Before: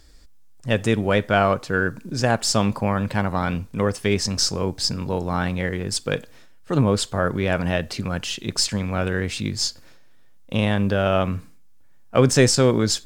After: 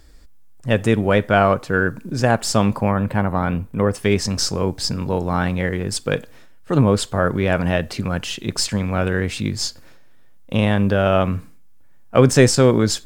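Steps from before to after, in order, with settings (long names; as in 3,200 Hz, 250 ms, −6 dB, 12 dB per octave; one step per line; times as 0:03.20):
parametric band 5,200 Hz −6 dB 1.7 octaves, from 0:02.91 −14.5 dB, from 0:03.93 −4.5 dB
level +3.5 dB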